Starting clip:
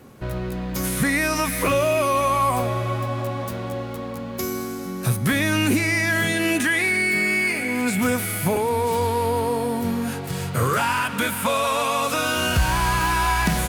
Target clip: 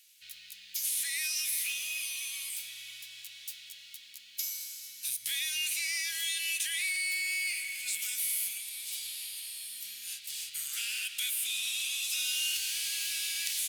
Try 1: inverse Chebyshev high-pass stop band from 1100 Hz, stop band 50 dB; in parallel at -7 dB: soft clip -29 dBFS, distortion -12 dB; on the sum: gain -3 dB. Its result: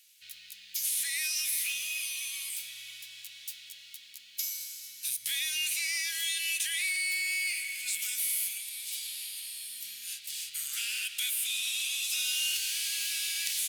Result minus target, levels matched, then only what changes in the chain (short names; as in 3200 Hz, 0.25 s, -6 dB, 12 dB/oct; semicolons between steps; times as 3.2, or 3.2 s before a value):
soft clip: distortion -7 dB
change: soft clip -39 dBFS, distortion -5 dB